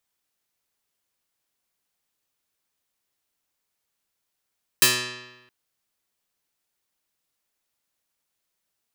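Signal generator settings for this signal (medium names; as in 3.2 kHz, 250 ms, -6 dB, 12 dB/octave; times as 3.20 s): plucked string B2, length 0.67 s, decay 1.09 s, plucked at 0.17, medium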